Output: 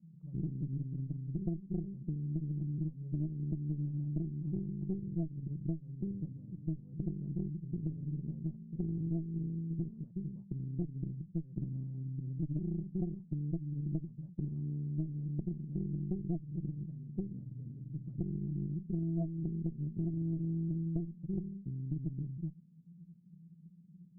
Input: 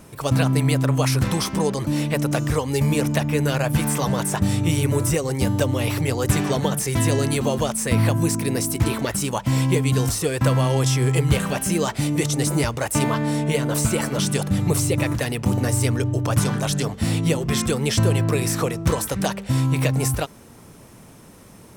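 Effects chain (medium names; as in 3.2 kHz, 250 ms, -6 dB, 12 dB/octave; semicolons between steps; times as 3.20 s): Butterworth band-pass 170 Hz, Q 5.5; tempo 0.9×; Chebyshev shaper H 3 -26 dB, 4 -11 dB, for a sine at -15 dBFS; compression 12:1, threshold -31 dBFS, peak gain reduction 14 dB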